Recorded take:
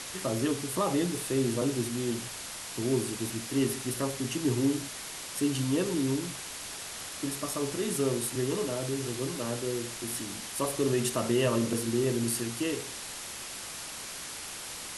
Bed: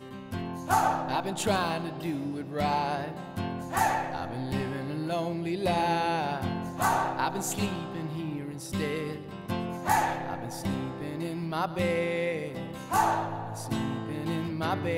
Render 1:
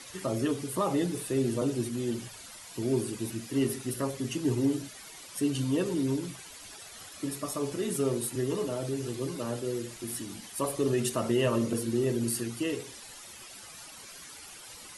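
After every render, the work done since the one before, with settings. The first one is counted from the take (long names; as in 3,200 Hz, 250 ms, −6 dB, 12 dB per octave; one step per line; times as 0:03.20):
broadband denoise 12 dB, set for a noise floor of −41 dBFS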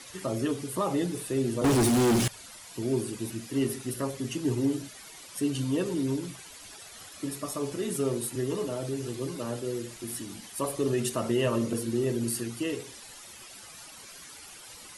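0:01.64–0:02.28: leveller curve on the samples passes 5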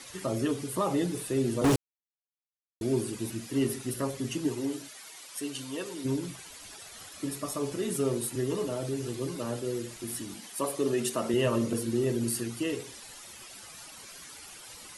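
0:01.76–0:02.81: silence
0:04.47–0:06.04: high-pass filter 400 Hz → 1,000 Hz 6 dB per octave
0:10.34–0:11.34: high-pass filter 180 Hz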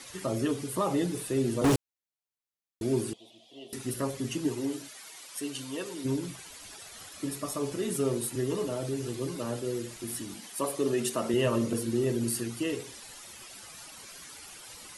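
0:03.13–0:03.73: pair of resonant band-passes 1,500 Hz, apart 2.3 octaves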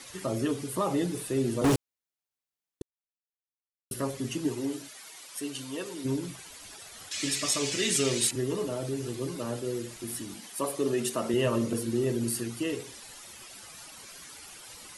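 0:02.82–0:03.91: silence
0:07.11–0:08.31: flat-topped bell 3,800 Hz +15 dB 2.5 octaves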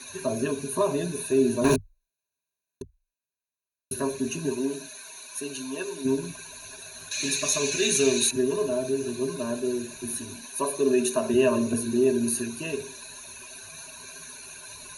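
EQ curve with evenly spaced ripples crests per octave 1.5, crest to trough 18 dB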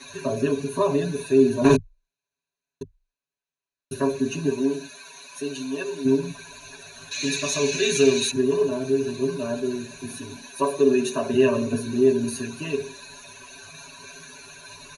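Bessel low-pass filter 5,100 Hz, order 2
comb filter 7.1 ms, depth 99%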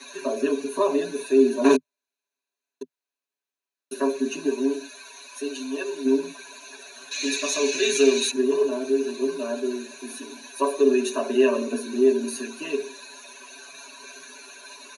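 Butterworth high-pass 240 Hz 36 dB per octave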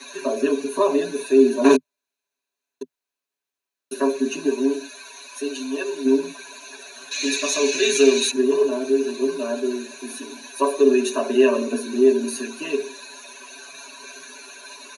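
level +3 dB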